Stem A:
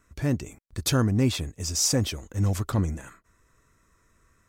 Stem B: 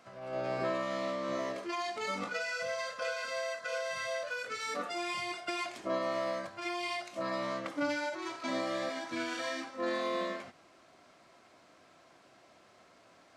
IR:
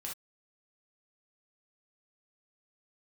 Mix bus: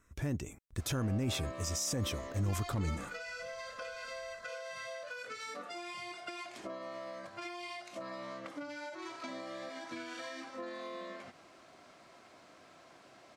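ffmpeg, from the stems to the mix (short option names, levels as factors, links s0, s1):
-filter_complex "[0:a]bandreject=f=4500:w=8.7,volume=0.596[s0];[1:a]acompressor=threshold=0.00708:ratio=10,adelay=800,volume=1.33[s1];[s0][s1]amix=inputs=2:normalize=0,alimiter=level_in=1.33:limit=0.0631:level=0:latency=1:release=14,volume=0.75"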